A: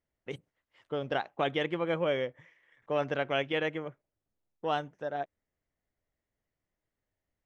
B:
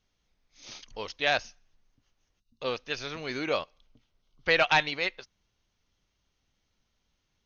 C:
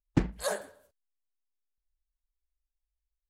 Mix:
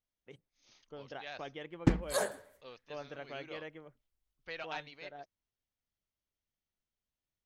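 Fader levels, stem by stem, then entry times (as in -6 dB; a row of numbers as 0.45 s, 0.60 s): -14.5 dB, -20.0 dB, -0.5 dB; 0.00 s, 0.00 s, 1.70 s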